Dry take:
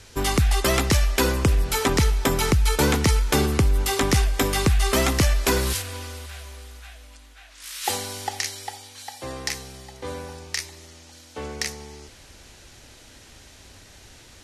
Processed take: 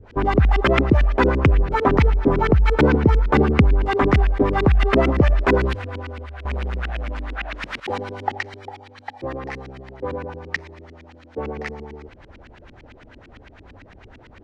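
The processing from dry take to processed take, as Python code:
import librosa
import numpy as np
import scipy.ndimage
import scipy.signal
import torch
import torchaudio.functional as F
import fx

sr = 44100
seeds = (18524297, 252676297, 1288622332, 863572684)

y = fx.leveller(x, sr, passes=5, at=(6.45, 7.8))
y = fx.filter_lfo_lowpass(y, sr, shape='saw_up', hz=8.9, low_hz=230.0, high_hz=2700.0, q=2.0)
y = y * librosa.db_to_amplitude(3.5)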